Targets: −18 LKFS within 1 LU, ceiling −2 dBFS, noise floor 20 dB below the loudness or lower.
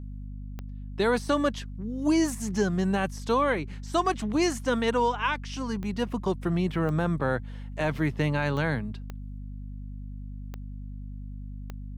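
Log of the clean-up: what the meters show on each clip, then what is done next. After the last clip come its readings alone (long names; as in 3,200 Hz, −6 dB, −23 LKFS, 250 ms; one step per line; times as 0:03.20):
number of clicks 7; mains hum 50 Hz; hum harmonics up to 250 Hz; level of the hum −35 dBFS; integrated loudness −27.5 LKFS; sample peak −13.0 dBFS; target loudness −18.0 LKFS
→ click removal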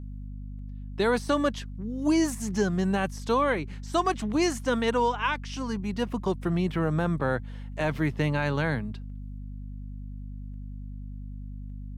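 number of clicks 0; mains hum 50 Hz; hum harmonics up to 250 Hz; level of the hum −35 dBFS
→ mains-hum notches 50/100/150/200/250 Hz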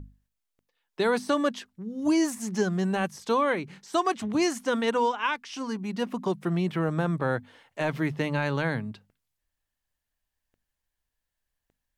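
mains hum none found; integrated loudness −28.0 LKFS; sample peak −13.0 dBFS; target loudness −18.0 LKFS
→ level +10 dB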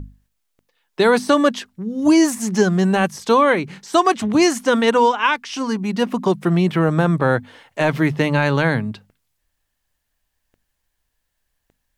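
integrated loudness −18.0 LKFS; sample peak −3.0 dBFS; background noise floor −74 dBFS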